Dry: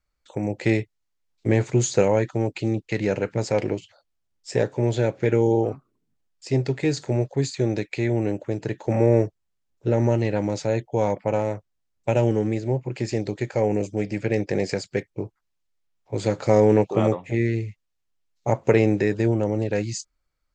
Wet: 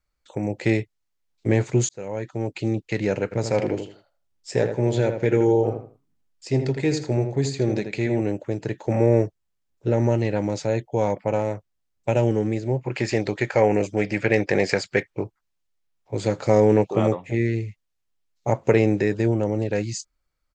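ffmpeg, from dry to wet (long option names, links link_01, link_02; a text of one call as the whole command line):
ffmpeg -i in.wav -filter_complex "[0:a]asplit=3[link_01][link_02][link_03];[link_01]afade=type=out:start_time=3.31:duration=0.02[link_04];[link_02]asplit=2[link_05][link_06];[link_06]adelay=81,lowpass=frequency=2600:poles=1,volume=-7dB,asplit=2[link_07][link_08];[link_08]adelay=81,lowpass=frequency=2600:poles=1,volume=0.27,asplit=2[link_09][link_10];[link_10]adelay=81,lowpass=frequency=2600:poles=1,volume=0.27[link_11];[link_05][link_07][link_09][link_11]amix=inputs=4:normalize=0,afade=type=in:start_time=3.31:duration=0.02,afade=type=out:start_time=8.2:duration=0.02[link_12];[link_03]afade=type=in:start_time=8.2:duration=0.02[link_13];[link_04][link_12][link_13]amix=inputs=3:normalize=0,asettb=1/sr,asplit=3[link_14][link_15][link_16];[link_14]atrim=end=12.844[link_17];[link_15]atrim=start=12.84:end=15.24,asetpts=PTS-STARTPTS,afade=type=in:duration=0.004:curve=qsin,afade=type=out:start_time=2.396:duration=0.004:curve=qsin,equalizer=frequency=1600:width_type=o:width=2.8:gain=10[link_18];[link_16]atrim=start=15.236[link_19];[link_17][link_18]acrossfade=duration=0.004:curve1=hsin:curve2=qsin[link_20];[link_20][link_19]acrossfade=duration=0.004:curve1=qsin:curve2=hsin,asplit=2[link_21][link_22];[link_21]atrim=end=1.89,asetpts=PTS-STARTPTS,afade=type=out:start_time=1.886:duration=0.004:curve=hsin[link_23];[link_22]atrim=start=1.89,asetpts=PTS-STARTPTS,afade=type=in:duration=0.78[link_24];[link_23][link_24]concat=n=2:v=0:a=1" out.wav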